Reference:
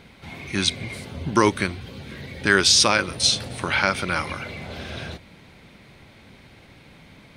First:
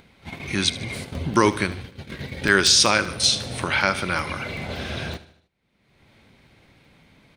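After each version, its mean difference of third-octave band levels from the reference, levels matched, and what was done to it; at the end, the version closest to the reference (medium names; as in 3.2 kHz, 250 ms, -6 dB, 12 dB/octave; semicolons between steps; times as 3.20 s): 4.0 dB: gate -35 dBFS, range -48 dB; upward compressor, threshold -23 dBFS; on a send: feedback delay 76 ms, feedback 49%, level -16 dB; on the sum: crackling interface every 0.19 s, samples 64, zero, from 0.96 s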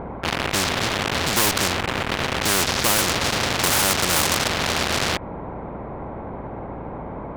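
12.0 dB: Chebyshev low-pass 1 kHz, order 3; in parallel at -11 dB: fuzz box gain 44 dB, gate -37 dBFS; on the sum: hum 60 Hz, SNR 31 dB; spectrum-flattening compressor 4:1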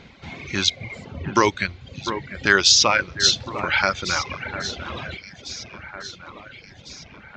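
6.5 dB: dynamic bell 210 Hz, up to -5 dB, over -35 dBFS, Q 0.72; echo whose repeats swap between lows and highs 701 ms, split 2.1 kHz, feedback 68%, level -10 dB; resampled via 16 kHz; reverb removal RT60 1.3 s; trim +2.5 dB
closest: first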